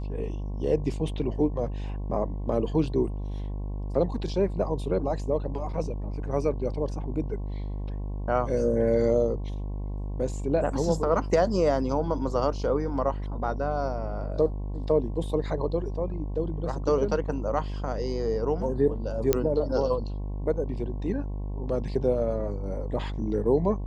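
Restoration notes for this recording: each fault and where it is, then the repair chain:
buzz 50 Hz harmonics 22 -32 dBFS
19.33 pop -7 dBFS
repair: de-click; de-hum 50 Hz, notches 22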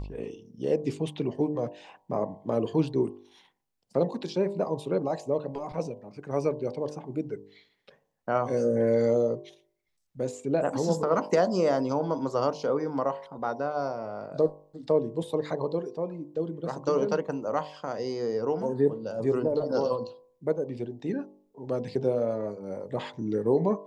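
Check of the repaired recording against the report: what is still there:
none

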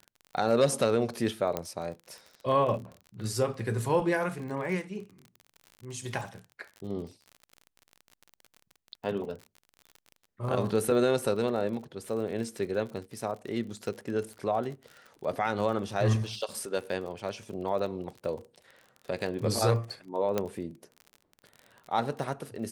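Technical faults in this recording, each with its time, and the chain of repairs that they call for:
crackle 43/s -38 dBFS
1.57 pop -16 dBFS
20.38 pop -14 dBFS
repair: de-click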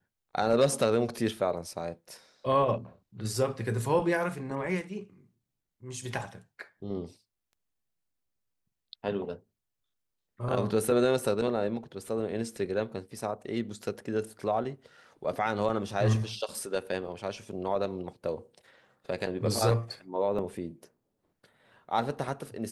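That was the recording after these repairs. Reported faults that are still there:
1.57 pop
20.38 pop

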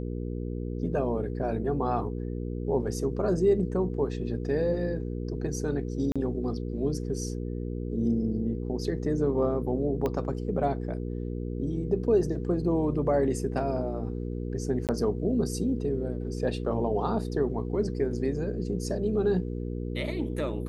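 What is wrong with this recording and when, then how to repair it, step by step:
hum 60 Hz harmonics 8 -33 dBFS
6.12–6.16 gap 36 ms
10.06 pop -17 dBFS
14.87–14.89 gap 18 ms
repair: de-click; de-hum 60 Hz, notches 8; interpolate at 6.12, 36 ms; interpolate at 14.87, 18 ms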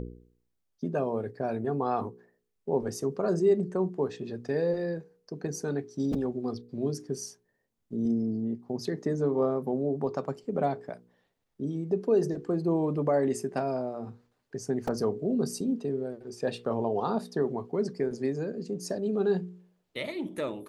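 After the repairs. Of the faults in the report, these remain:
10.06 pop

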